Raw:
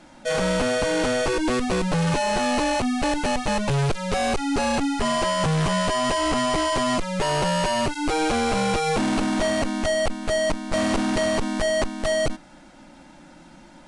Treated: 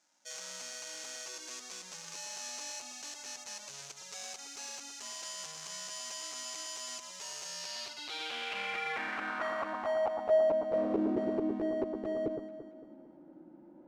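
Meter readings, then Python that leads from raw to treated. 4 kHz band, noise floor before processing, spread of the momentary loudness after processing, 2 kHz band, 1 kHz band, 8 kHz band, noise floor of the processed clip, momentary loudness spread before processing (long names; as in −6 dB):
−13.0 dB, −48 dBFS, 13 LU, −14.0 dB, −17.0 dB, −8.0 dB, −55 dBFS, 2 LU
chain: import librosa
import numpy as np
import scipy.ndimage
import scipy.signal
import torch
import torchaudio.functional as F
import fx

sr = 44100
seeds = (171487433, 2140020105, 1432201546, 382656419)

y = scipy.signal.medfilt(x, 15)
y = fx.filter_sweep_bandpass(y, sr, from_hz=6300.0, to_hz=360.0, start_s=7.45, end_s=11.1, q=3.1)
y = fx.echo_alternate(y, sr, ms=113, hz=1500.0, feedback_pct=65, wet_db=-6.0)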